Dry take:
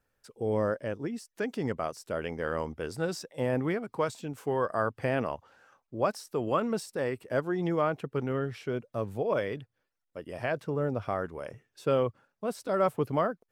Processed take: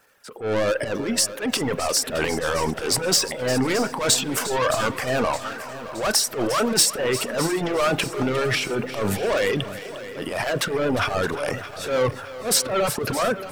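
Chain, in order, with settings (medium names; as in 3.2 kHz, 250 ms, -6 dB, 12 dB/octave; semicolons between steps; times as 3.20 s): overdrive pedal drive 28 dB, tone 3.5 kHz, clips at -13.5 dBFS; transient shaper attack -12 dB, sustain +9 dB; reverberation RT60 1.1 s, pre-delay 31 ms, DRR 8.5 dB; reverb removal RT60 0.79 s; treble shelf 5.7 kHz +10.5 dB, from 12.62 s +4 dB; thinning echo 354 ms, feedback 29%, level -14 dB; bit-crushed delay 618 ms, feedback 55%, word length 8-bit, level -14 dB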